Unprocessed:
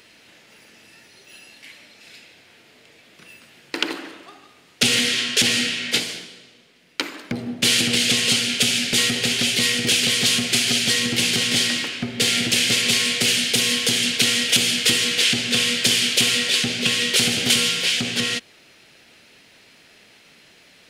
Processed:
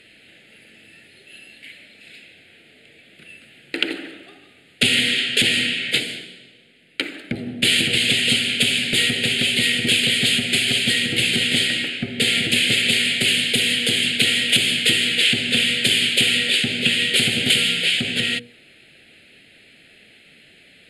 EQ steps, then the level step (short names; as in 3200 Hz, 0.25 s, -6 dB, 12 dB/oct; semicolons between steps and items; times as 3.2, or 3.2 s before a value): LPF 11000 Hz 24 dB/oct; notches 60/120/180/240/300/360/420/480 Hz; fixed phaser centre 2500 Hz, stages 4; +3.5 dB